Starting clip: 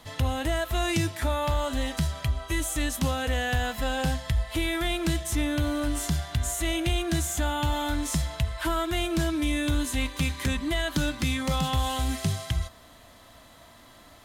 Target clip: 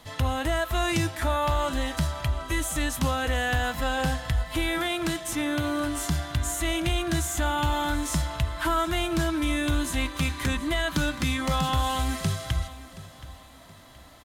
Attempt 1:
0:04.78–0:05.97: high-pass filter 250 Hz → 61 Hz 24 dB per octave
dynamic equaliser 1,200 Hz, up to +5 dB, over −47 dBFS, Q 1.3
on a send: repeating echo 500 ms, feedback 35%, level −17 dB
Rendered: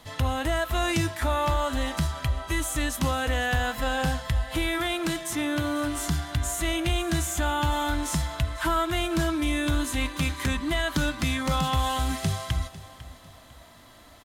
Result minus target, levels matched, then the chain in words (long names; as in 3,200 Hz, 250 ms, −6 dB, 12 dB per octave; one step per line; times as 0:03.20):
echo 224 ms early
0:04.78–0:05.97: high-pass filter 250 Hz → 61 Hz 24 dB per octave
dynamic equaliser 1,200 Hz, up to +5 dB, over −47 dBFS, Q 1.3
on a send: repeating echo 724 ms, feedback 35%, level −17 dB